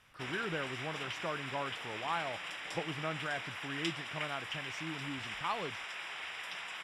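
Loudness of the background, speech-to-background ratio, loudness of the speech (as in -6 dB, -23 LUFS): -40.5 LUFS, -0.5 dB, -41.0 LUFS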